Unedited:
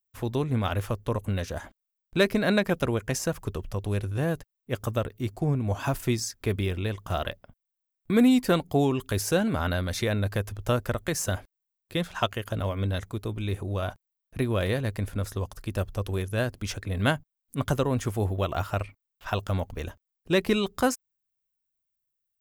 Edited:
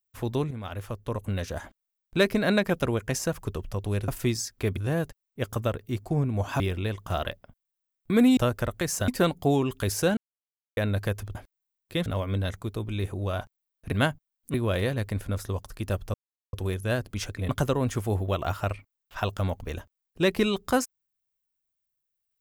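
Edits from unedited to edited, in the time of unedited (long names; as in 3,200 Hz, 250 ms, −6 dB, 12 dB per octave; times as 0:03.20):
0:00.51–0:01.50: fade in, from −12.5 dB
0:05.91–0:06.60: move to 0:04.08
0:09.46–0:10.06: silence
0:10.64–0:11.35: move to 0:08.37
0:12.06–0:12.55: remove
0:16.01: splice in silence 0.39 s
0:16.97–0:17.59: move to 0:14.41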